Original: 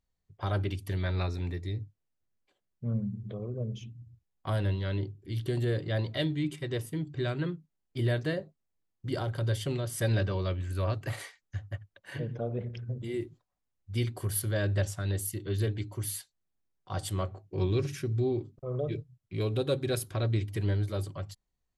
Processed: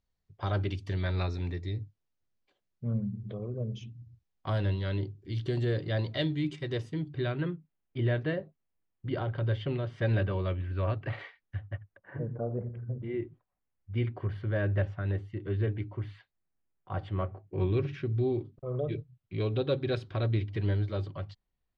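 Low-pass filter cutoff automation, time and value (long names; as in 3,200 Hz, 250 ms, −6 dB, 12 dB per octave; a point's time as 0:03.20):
low-pass filter 24 dB per octave
0:06.79 6,100 Hz
0:07.50 3,100 Hz
0:11.68 3,100 Hz
0:12.17 1,400 Hz
0:12.71 1,400 Hz
0:13.16 2,500 Hz
0:17.33 2,500 Hz
0:18.31 4,000 Hz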